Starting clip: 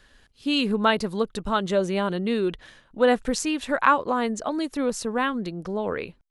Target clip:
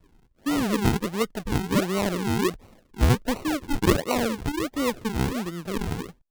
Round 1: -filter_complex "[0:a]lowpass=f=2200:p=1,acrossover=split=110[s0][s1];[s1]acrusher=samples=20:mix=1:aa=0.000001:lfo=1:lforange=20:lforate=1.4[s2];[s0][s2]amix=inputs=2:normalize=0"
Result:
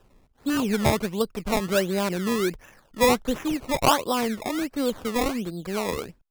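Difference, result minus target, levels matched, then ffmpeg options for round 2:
decimation with a swept rate: distortion -11 dB
-filter_complex "[0:a]lowpass=f=2200:p=1,acrossover=split=110[s0][s1];[s1]acrusher=samples=52:mix=1:aa=0.000001:lfo=1:lforange=52:lforate=1.4[s2];[s0][s2]amix=inputs=2:normalize=0"

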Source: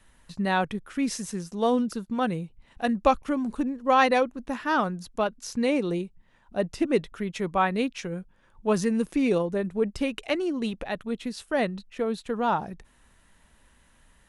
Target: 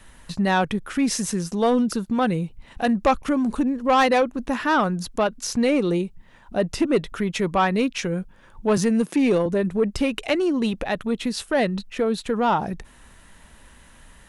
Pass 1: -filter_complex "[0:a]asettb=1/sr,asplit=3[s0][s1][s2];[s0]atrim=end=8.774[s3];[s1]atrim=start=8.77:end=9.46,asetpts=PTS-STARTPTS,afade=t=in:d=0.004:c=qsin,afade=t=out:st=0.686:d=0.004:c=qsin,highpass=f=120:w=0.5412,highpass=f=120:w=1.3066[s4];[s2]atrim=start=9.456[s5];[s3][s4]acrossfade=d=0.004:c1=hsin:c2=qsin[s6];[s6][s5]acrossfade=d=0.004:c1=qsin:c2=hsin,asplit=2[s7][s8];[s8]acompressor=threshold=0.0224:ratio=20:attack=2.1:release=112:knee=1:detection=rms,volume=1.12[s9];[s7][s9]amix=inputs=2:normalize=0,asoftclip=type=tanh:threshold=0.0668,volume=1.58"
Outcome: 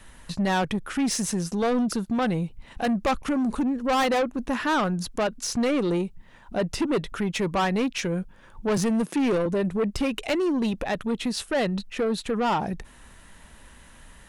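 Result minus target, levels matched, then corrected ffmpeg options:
saturation: distortion +8 dB
-filter_complex "[0:a]asettb=1/sr,asplit=3[s0][s1][s2];[s0]atrim=end=8.774[s3];[s1]atrim=start=8.77:end=9.46,asetpts=PTS-STARTPTS,afade=t=in:d=0.004:c=qsin,afade=t=out:st=0.686:d=0.004:c=qsin,highpass=f=120:w=0.5412,highpass=f=120:w=1.3066[s4];[s2]atrim=start=9.456[s5];[s3][s4]acrossfade=d=0.004:c1=hsin:c2=qsin[s6];[s6][s5]acrossfade=d=0.004:c1=qsin:c2=hsin,asplit=2[s7][s8];[s8]acompressor=threshold=0.0224:ratio=20:attack=2.1:release=112:knee=1:detection=rms,volume=1.12[s9];[s7][s9]amix=inputs=2:normalize=0,asoftclip=type=tanh:threshold=0.178,volume=1.58"

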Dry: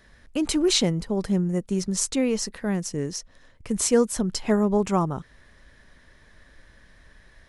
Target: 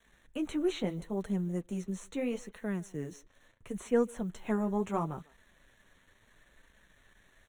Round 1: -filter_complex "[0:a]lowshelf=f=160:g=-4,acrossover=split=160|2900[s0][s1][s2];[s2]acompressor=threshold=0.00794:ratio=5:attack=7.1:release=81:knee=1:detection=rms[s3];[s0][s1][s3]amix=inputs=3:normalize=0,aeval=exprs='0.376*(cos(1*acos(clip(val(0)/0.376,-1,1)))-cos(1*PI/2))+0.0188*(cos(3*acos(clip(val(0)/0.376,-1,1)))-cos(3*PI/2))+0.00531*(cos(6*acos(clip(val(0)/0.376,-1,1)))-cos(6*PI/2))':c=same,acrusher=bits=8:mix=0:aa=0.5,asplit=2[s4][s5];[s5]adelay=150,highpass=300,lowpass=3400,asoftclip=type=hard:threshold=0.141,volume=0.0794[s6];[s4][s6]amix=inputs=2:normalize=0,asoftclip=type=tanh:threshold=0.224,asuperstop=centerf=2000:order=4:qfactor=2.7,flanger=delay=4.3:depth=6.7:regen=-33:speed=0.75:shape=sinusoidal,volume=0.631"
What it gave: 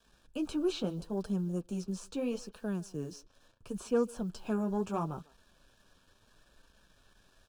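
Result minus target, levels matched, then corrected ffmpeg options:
saturation: distortion +18 dB; 2 kHz band -4.0 dB
-filter_complex "[0:a]lowshelf=f=160:g=-4,acrossover=split=160|2900[s0][s1][s2];[s2]acompressor=threshold=0.00794:ratio=5:attack=7.1:release=81:knee=1:detection=rms[s3];[s0][s1][s3]amix=inputs=3:normalize=0,aeval=exprs='0.376*(cos(1*acos(clip(val(0)/0.376,-1,1)))-cos(1*PI/2))+0.0188*(cos(3*acos(clip(val(0)/0.376,-1,1)))-cos(3*PI/2))+0.00531*(cos(6*acos(clip(val(0)/0.376,-1,1)))-cos(6*PI/2))':c=same,acrusher=bits=8:mix=0:aa=0.5,asplit=2[s4][s5];[s5]adelay=150,highpass=300,lowpass=3400,asoftclip=type=hard:threshold=0.141,volume=0.0794[s6];[s4][s6]amix=inputs=2:normalize=0,asoftclip=type=tanh:threshold=0.75,asuperstop=centerf=4900:order=4:qfactor=2.7,flanger=delay=4.3:depth=6.7:regen=-33:speed=0.75:shape=sinusoidal,volume=0.631"

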